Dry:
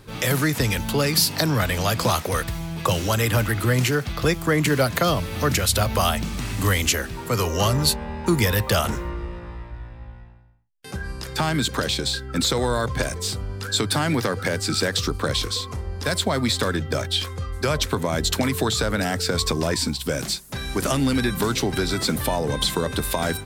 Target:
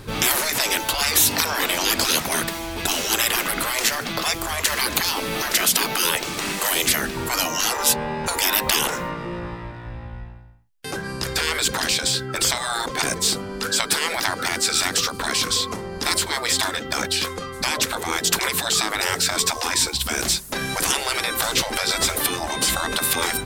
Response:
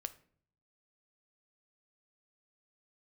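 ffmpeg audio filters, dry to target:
-af "aeval=exprs='0.531*(cos(1*acos(clip(val(0)/0.531,-1,1)))-cos(1*PI/2))+0.00422*(cos(7*acos(clip(val(0)/0.531,-1,1)))-cos(7*PI/2))':channel_layout=same,afftfilt=real='re*lt(hypot(re,im),0.141)':imag='im*lt(hypot(re,im),0.141)':win_size=1024:overlap=0.75,volume=8.5dB"

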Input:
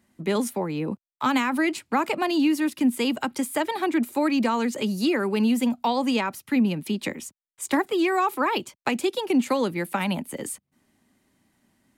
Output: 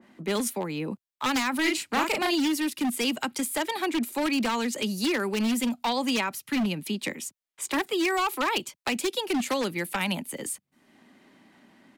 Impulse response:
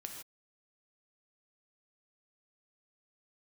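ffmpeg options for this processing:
-filter_complex "[0:a]acrossover=split=170|4400[link_01][link_02][link_03];[link_02]acompressor=mode=upward:threshold=-39dB:ratio=2.5[link_04];[link_01][link_04][link_03]amix=inputs=3:normalize=0,equalizer=frequency=68:width=1.5:gain=-6,aeval=exprs='0.133*(abs(mod(val(0)/0.133+3,4)-2)-1)':channel_layout=same,asplit=3[link_05][link_06][link_07];[link_05]afade=type=out:start_time=1.64:duration=0.02[link_08];[link_06]asplit=2[link_09][link_10];[link_10]adelay=38,volume=-3dB[link_11];[link_09][link_11]amix=inputs=2:normalize=0,afade=type=in:start_time=1.64:duration=0.02,afade=type=out:start_time=2.34:duration=0.02[link_12];[link_07]afade=type=in:start_time=2.34:duration=0.02[link_13];[link_08][link_12][link_13]amix=inputs=3:normalize=0,adynamicequalizer=threshold=0.0112:dfrequency=1700:dqfactor=0.7:tfrequency=1700:tqfactor=0.7:attack=5:release=100:ratio=0.375:range=3.5:mode=boostabove:tftype=highshelf,volume=-3.5dB"

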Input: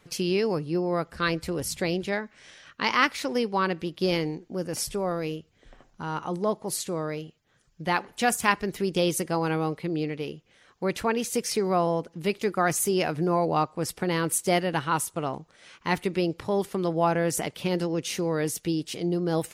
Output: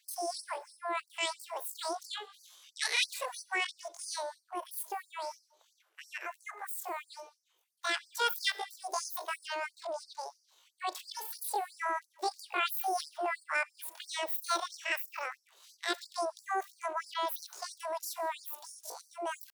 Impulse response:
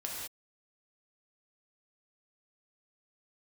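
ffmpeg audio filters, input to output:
-filter_complex "[0:a]asetrate=85689,aresample=44100,atempo=0.514651,asplit=2[link_01][link_02];[1:a]atrim=start_sample=2205[link_03];[link_02][link_03]afir=irnorm=-1:irlink=0,volume=-17dB[link_04];[link_01][link_04]amix=inputs=2:normalize=0,afftfilt=real='re*gte(b*sr/1024,330*pow(4500/330,0.5+0.5*sin(2*PI*3*pts/sr)))':imag='im*gte(b*sr/1024,330*pow(4500/330,0.5+0.5*sin(2*PI*3*pts/sr)))':win_size=1024:overlap=0.75,volume=-7.5dB"

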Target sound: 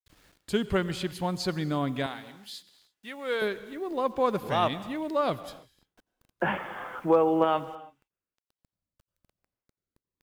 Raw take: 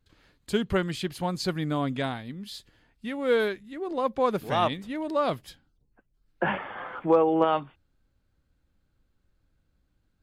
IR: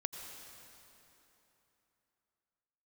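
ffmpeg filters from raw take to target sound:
-filter_complex "[0:a]asettb=1/sr,asplit=3[link_01][link_02][link_03];[link_01]atrim=end=2.064[link_04];[link_02]atrim=start=2.06:end=3.42,asetpts=PTS-STARTPTS,afade=type=in:duration=0.004:curve=qsin,afade=type=out:start_time=1.356:duration=0.004:curve=qsin,highpass=frequency=900:poles=1[link_05];[link_03]atrim=start=3.416[link_06];[link_04][link_05]acrossfade=duration=0.004:curve1=hsin:curve2=qsin[link_07];[link_07][link_06]acrossfade=duration=0.004:curve1=qsin:curve2=hsin,acrusher=bits=9:mix=0:aa=0.000001,asplit=2[link_08][link_09];[1:a]atrim=start_sample=2205,afade=type=out:start_time=0.38:duration=0.01,atrim=end_sample=17199[link_10];[link_09][link_10]afir=irnorm=-1:irlink=0,volume=-6dB[link_11];[link_08][link_11]amix=inputs=2:normalize=0,volume=-4dB"

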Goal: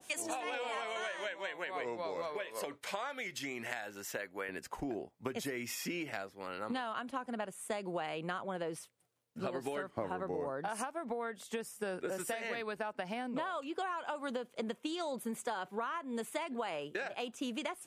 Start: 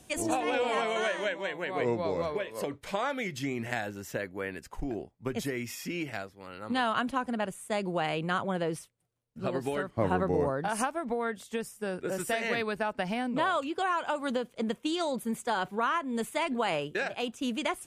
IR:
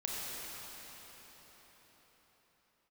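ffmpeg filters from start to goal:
-af "asetnsamples=nb_out_samples=441:pad=0,asendcmd='4.49 highpass f 350',highpass=frequency=1100:poles=1,acompressor=threshold=-40dB:ratio=6,adynamicequalizer=threshold=0.00112:dfrequency=1600:dqfactor=0.7:tfrequency=1600:tqfactor=0.7:attack=5:release=100:ratio=0.375:range=1.5:mode=cutabove:tftype=highshelf,volume=5dB"

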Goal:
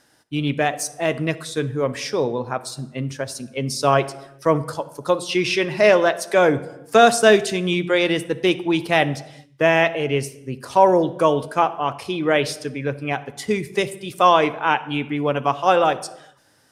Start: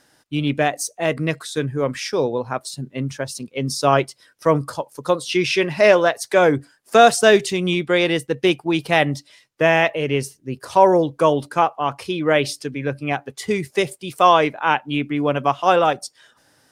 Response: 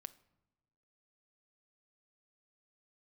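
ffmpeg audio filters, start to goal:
-filter_complex "[1:a]atrim=start_sample=2205,afade=type=out:start_time=0.32:duration=0.01,atrim=end_sample=14553,asetrate=28224,aresample=44100[link_01];[0:a][link_01]afir=irnorm=-1:irlink=0,volume=2.5dB"

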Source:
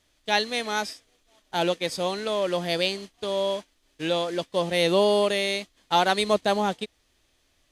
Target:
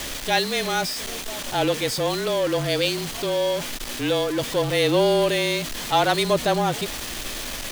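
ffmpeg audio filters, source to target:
ffmpeg -i in.wav -af "aeval=exprs='val(0)+0.5*0.0562*sgn(val(0))':channel_layout=same,afreqshift=-29" out.wav

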